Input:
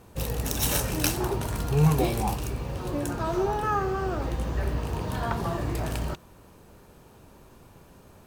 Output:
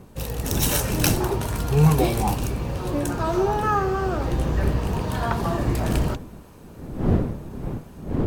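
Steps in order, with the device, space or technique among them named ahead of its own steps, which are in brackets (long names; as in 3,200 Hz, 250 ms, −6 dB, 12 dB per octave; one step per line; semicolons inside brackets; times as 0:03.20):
smartphone video outdoors (wind on the microphone; automatic gain control gain up to 4.5 dB; AAC 96 kbit/s 48,000 Hz)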